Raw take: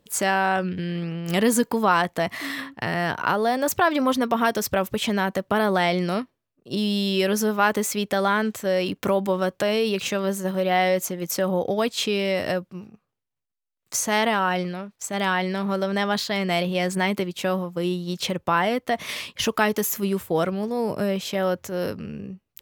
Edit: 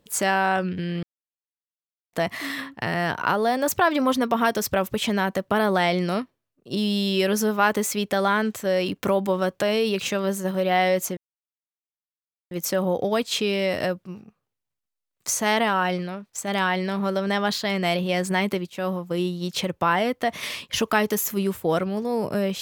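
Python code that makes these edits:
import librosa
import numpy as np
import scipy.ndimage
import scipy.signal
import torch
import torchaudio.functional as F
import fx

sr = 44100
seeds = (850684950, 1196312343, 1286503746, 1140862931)

y = fx.edit(x, sr, fx.silence(start_s=1.03, length_s=1.1),
    fx.insert_silence(at_s=11.17, length_s=1.34),
    fx.fade_in_from(start_s=17.36, length_s=0.3, curve='qsin', floor_db=-18.0), tone=tone)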